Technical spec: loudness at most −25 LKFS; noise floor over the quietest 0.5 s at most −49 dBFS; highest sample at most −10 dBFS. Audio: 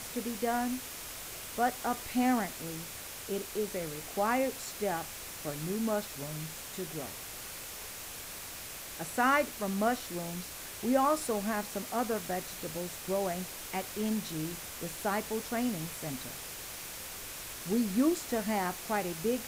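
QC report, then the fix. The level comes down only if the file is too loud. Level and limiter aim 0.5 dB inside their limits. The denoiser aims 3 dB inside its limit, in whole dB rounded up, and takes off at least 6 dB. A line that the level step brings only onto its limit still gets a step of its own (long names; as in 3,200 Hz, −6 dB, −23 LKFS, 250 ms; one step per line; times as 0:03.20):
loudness −34.0 LKFS: in spec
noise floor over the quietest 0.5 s −44 dBFS: out of spec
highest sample −15.0 dBFS: in spec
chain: broadband denoise 8 dB, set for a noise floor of −44 dBFS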